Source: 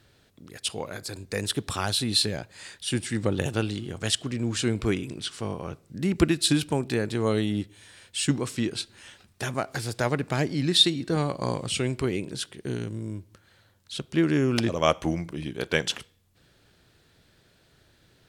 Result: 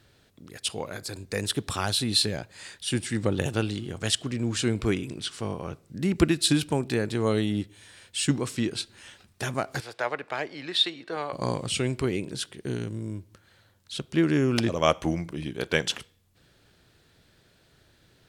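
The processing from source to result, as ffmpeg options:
ffmpeg -i in.wav -filter_complex "[0:a]asettb=1/sr,asplit=3[link_01][link_02][link_03];[link_01]atrim=end=9.804[link_04];[link_02]atrim=start=9.8:end=11.33,asetpts=PTS-STARTPTS,afade=type=in:duration=0.004:curve=qsin,afade=type=out:start_time=1.526:duration=0.004:curve=qsin,acrossover=split=450 3800:gain=0.0891 1 0.178[link_05][link_06][link_07];[link_05][link_06][link_07]amix=inputs=3:normalize=0[link_08];[link_03]atrim=start=11.326[link_09];[link_04][link_08]acrossfade=duration=0.004:curve1=hsin:curve2=qsin[link_10];[link_10][link_09]acrossfade=duration=0.004:curve1=qsin:curve2=hsin" out.wav

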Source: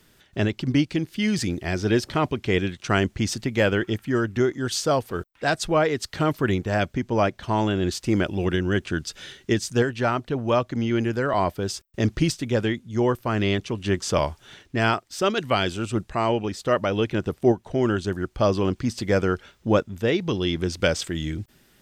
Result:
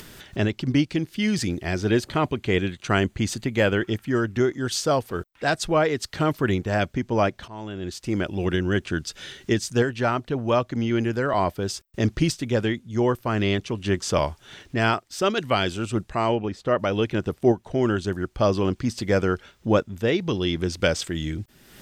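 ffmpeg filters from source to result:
ffmpeg -i in.wav -filter_complex "[0:a]asettb=1/sr,asplit=3[link_01][link_02][link_03];[link_01]atrim=end=1.814[link_04];[link_02]atrim=start=1.81:end=3.82,asetpts=PTS-STARTPTS,afade=type=in:duration=0.004:curve=qsin,afade=type=out:start_time=2.006:duration=0.004:curve=qsin,bandreject=frequency=5400:width=6.4[link_05];[link_03]atrim=start=3.816[link_06];[link_04][link_05]acrossfade=duration=0.004:curve1=hsin:curve2=qsin[link_07];[link_07][link_06]acrossfade=duration=0.004:curve1=qsin:curve2=hsin,asplit=3[link_08][link_09][link_10];[link_08]afade=type=out:start_time=16.34:duration=0.02[link_11];[link_09]lowpass=frequency=2000:poles=1,afade=type=in:start_time=16.34:duration=0.02,afade=type=out:start_time=16.78:duration=0.02[link_12];[link_10]afade=type=in:start_time=16.78:duration=0.02[link_13];[link_11][link_12][link_13]amix=inputs=3:normalize=0,asplit=2[link_14][link_15];[link_14]atrim=end=7.48,asetpts=PTS-STARTPTS,afade=type=out:start_time=7.476:duration=0.004:curve=hsin:silence=0.1[link_16];[link_15]atrim=start=7.48,asetpts=PTS-STARTPTS,afade=type=in:duration=1.06:silence=0.1[link_17];[link_16][link_17]concat=n=2:v=0:a=1,acompressor=mode=upward:threshold=-32dB:ratio=2.5" out.wav

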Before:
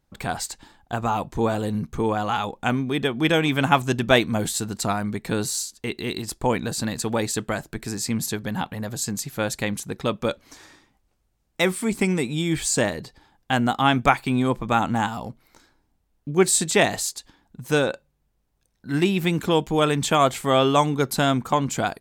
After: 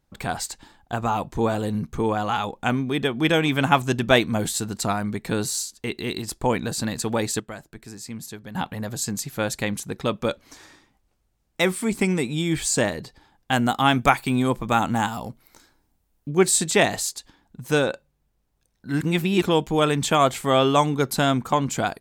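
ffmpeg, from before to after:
ffmpeg -i in.wav -filter_complex "[0:a]asettb=1/sr,asplit=3[link_01][link_02][link_03];[link_01]atrim=end=13.514[link_04];[link_02]atrim=start=13.51:end=16.29,asetpts=PTS-STARTPTS,afade=type=in:duration=0.004:curve=qsin,afade=type=out:start_time=2.776:duration=0.004:curve=qsin,highshelf=frequency=7800:gain=9.5[link_05];[link_03]atrim=start=16.286[link_06];[link_04][link_05]acrossfade=duration=0.004:curve1=hsin:curve2=qsin[link_07];[link_07][link_06]acrossfade=duration=0.004:curve1=qsin:curve2=hsin,asplit=5[link_08][link_09][link_10][link_11][link_12];[link_08]atrim=end=7.402[link_13];[link_09]atrim=start=7.398:end=8.552,asetpts=PTS-STARTPTS,volume=-10dB[link_14];[link_10]atrim=start=8.548:end=19.012[link_15];[link_11]atrim=start=19.008:end=19.422,asetpts=PTS-STARTPTS,areverse[link_16];[link_12]atrim=start=19.418[link_17];[link_13][link_14]acrossfade=duration=0.004:curve1=hsin:curve2=hsin[link_18];[link_18][link_15]acrossfade=duration=0.004:curve1=hsin:curve2=hsin[link_19];[link_19][link_16]acrossfade=duration=0.004:curve1=hsin:curve2=hsin[link_20];[link_20][link_17]acrossfade=duration=0.004:curve1=hsin:curve2=hsin" out.wav

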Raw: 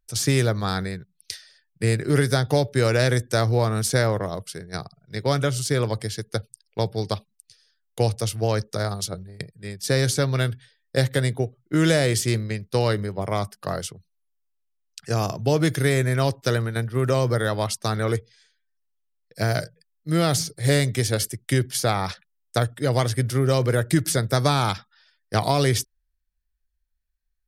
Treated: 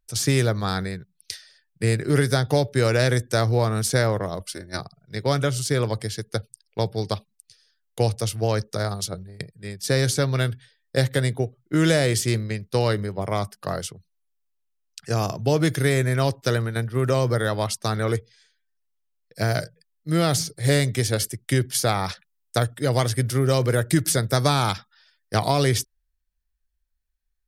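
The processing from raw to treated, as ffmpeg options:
ffmpeg -i in.wav -filter_complex "[0:a]asettb=1/sr,asplit=3[link_01][link_02][link_03];[link_01]atrim=end=4.404[link_04];[link_02]atrim=start=4.4:end=4.8,asetpts=PTS-STARTPTS,afade=type=in:duration=0.004:curve=qsin,afade=type=out:start_time=0.396:duration=0.004:curve=qsin,aecho=1:1:3.4:0.91,atrim=end_sample=17640[link_05];[link_03]atrim=start=4.796[link_06];[link_04][link_05]acrossfade=duration=0.004:curve1=hsin:curve2=qsin[link_07];[link_07][link_06]acrossfade=duration=0.004:curve1=qsin:curve2=hsin,asettb=1/sr,asplit=3[link_08][link_09][link_10];[link_08]atrim=end=21.714[link_11];[link_09]atrim=start=21.71:end=25.38,asetpts=PTS-STARTPTS,afade=type=in:duration=0.004:curve=qsin,afade=type=out:start_time=3.666:duration=0.004:curve=qsin,highshelf=frequency=5500:gain=3.5[link_12];[link_10]atrim=start=25.376[link_13];[link_11][link_12]acrossfade=duration=0.004:curve1=hsin:curve2=qsin[link_14];[link_14][link_13]acrossfade=duration=0.004:curve1=qsin:curve2=hsin" out.wav

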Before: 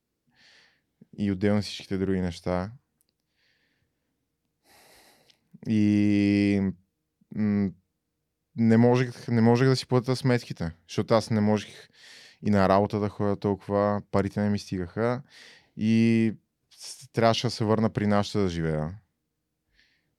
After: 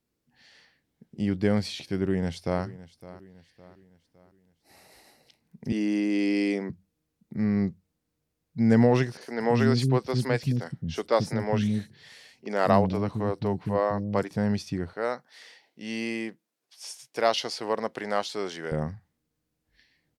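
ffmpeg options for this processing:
ffmpeg -i in.wav -filter_complex "[0:a]asplit=2[link_01][link_02];[link_02]afade=type=in:start_time=1.97:duration=0.01,afade=type=out:start_time=2.63:duration=0.01,aecho=0:1:560|1120|1680|2240:0.133352|0.0600085|0.0270038|0.0121517[link_03];[link_01][link_03]amix=inputs=2:normalize=0,asettb=1/sr,asplit=3[link_04][link_05][link_06];[link_04]atrim=end=5.724[link_07];[link_05]atrim=start=5.72:end=6.7,asetpts=PTS-STARTPTS,afade=type=in:duration=0.004:curve=qsin,afade=type=out:start_time=0.976:duration=0.004:curve=qsin,highpass=frequency=260:width=0.5412,highpass=frequency=260:width=1.3066[link_08];[link_06]atrim=start=6.696[link_09];[link_07][link_08]acrossfade=duration=0.004:curve1=hsin:curve2=qsin[link_10];[link_10][link_09]acrossfade=duration=0.004:curve1=qsin:curve2=hsin,asettb=1/sr,asplit=3[link_11][link_12][link_13];[link_11]atrim=end=9.174[link_14];[link_12]atrim=start=9.17:end=14.31,asetpts=PTS-STARTPTS,afade=type=in:duration=0.004:curve=qsin,afade=type=out:start_time=5.136:duration=0.004:curve=qsin,acrossover=split=290|5900[link_15][link_16][link_17];[link_17]adelay=40[link_18];[link_15]adelay=220[link_19];[link_19][link_16][link_18]amix=inputs=3:normalize=0,atrim=end_sample=226674[link_20];[link_13]atrim=start=14.306[link_21];[link_14][link_20]acrossfade=duration=0.004:curve1=hsin:curve2=qsin[link_22];[link_22][link_21]acrossfade=duration=0.004:curve1=qsin:curve2=hsin,asettb=1/sr,asplit=3[link_23][link_24][link_25];[link_23]atrim=end=14.934[link_26];[link_24]atrim=start=14.93:end=18.72,asetpts=PTS-STARTPTS,afade=type=in:duration=0.004:curve=qsin,afade=type=out:start_time=3.786:duration=0.004:curve=qsin,highpass=460[link_27];[link_25]atrim=start=18.716[link_28];[link_26][link_27]acrossfade=duration=0.004:curve1=hsin:curve2=qsin[link_29];[link_29][link_28]acrossfade=duration=0.004:curve1=qsin:curve2=hsin" out.wav

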